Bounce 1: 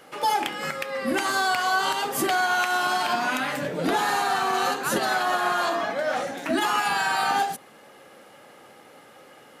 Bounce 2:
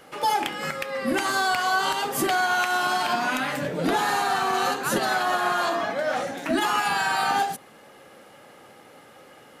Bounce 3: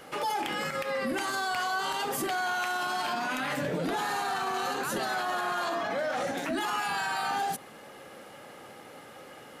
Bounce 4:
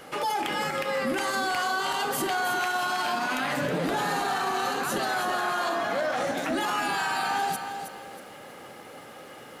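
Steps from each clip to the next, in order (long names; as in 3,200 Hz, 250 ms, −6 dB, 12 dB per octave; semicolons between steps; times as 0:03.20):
low-shelf EQ 97 Hz +8.5 dB
brickwall limiter −24.5 dBFS, peak gain reduction 11 dB; level +1.5 dB
feedback echo at a low word length 319 ms, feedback 35%, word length 10 bits, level −8 dB; level +2.5 dB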